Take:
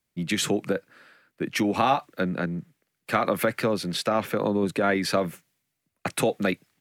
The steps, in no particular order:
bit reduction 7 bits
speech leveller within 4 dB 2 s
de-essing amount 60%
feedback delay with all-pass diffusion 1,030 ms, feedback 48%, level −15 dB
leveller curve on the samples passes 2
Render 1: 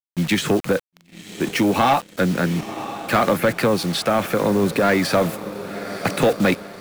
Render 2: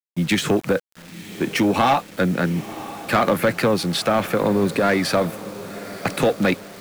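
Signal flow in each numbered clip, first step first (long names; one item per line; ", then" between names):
bit reduction, then feedback delay with all-pass diffusion, then speech leveller, then de-essing, then leveller curve on the samples
speech leveller, then de-essing, then leveller curve on the samples, then feedback delay with all-pass diffusion, then bit reduction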